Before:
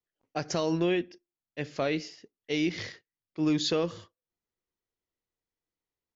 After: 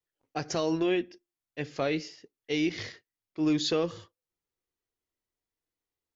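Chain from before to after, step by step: flange 0.47 Hz, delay 2.1 ms, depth 1 ms, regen -67%; gain +4 dB

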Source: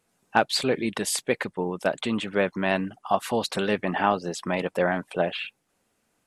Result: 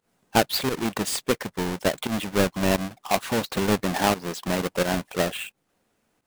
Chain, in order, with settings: half-waves squared off; pump 87 bpm, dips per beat 1, -14 dB, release 0.104 s; gain -3.5 dB

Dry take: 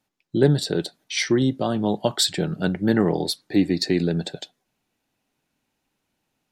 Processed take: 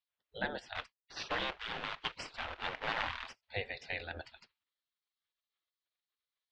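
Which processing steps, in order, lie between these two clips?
0.75–3.43 companded quantiser 4-bit; LPF 3400 Hz 24 dB/oct; spectral gate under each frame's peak -20 dB weak; ending taper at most 550 dB/s; gain -2.5 dB

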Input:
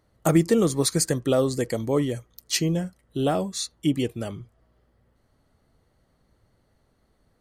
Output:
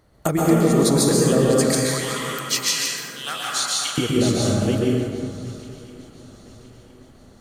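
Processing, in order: reverse delay 0.437 s, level -5 dB; 1.56–3.98 HPF 1300 Hz 24 dB/oct; compressor 6:1, threshold -27 dBFS, peak gain reduction 13 dB; swung echo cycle 1.015 s, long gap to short 3:1, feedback 42%, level -20.5 dB; plate-style reverb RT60 2.2 s, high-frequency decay 0.45×, pre-delay 0.11 s, DRR -4.5 dB; gain +7.5 dB

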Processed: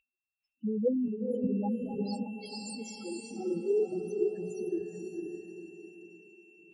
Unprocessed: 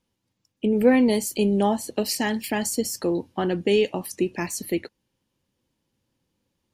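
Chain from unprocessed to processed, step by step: reverse delay 0.163 s, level -11 dB; loudest bins only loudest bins 2; 0.88–1.49 level quantiser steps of 11 dB; whine 2700 Hz -58 dBFS; on a send: diffused feedback echo 0.481 s, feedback 43%, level -3 dB; on the sum: spectral noise reduction 27 dB; 2.27–3.31 tilt shelf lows -8.5 dB, about 1100 Hz; gain -7 dB; AAC 32 kbps 48000 Hz

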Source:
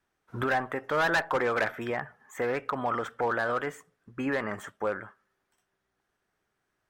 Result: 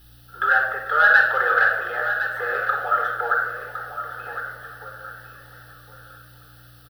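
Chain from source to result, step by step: HPF 490 Hz 12 dB/oct; bell 1500 Hz +14.5 dB 0.63 oct; 3.34–5.04 compressor, threshold -40 dBFS, peak gain reduction 21.5 dB; added noise white -54 dBFS; fixed phaser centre 1500 Hz, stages 8; hum 60 Hz, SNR 28 dB; echo 1.06 s -10.5 dB; shoebox room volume 2200 m³, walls furnished, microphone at 4.1 m; warbling echo 0.444 s, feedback 69%, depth 79 cents, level -17.5 dB; gain -1 dB

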